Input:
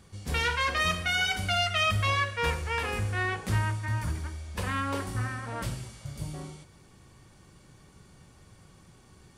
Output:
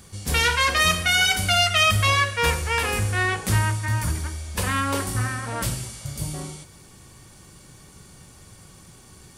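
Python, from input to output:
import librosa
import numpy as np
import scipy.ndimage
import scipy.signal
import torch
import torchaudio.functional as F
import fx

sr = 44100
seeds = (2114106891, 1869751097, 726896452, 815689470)

y = fx.high_shelf(x, sr, hz=5700.0, db=12.0)
y = y * librosa.db_to_amplitude(6.0)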